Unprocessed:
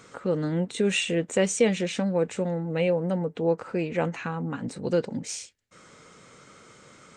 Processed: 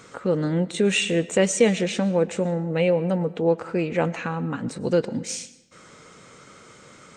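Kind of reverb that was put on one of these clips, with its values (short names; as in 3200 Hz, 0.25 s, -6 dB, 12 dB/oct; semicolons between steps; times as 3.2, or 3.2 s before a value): digital reverb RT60 0.97 s, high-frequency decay 0.8×, pre-delay 75 ms, DRR 17.5 dB; gain +3.5 dB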